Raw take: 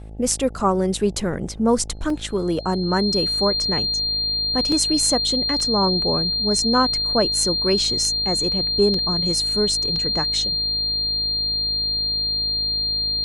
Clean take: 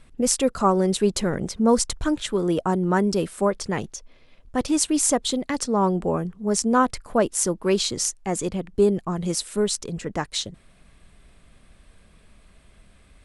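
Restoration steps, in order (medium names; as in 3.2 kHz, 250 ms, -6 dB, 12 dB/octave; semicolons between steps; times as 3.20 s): de-hum 53.3 Hz, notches 16; band-stop 4.2 kHz, Q 30; interpolate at 2.10/4.72/5.60/8.94/9.96 s, 2.5 ms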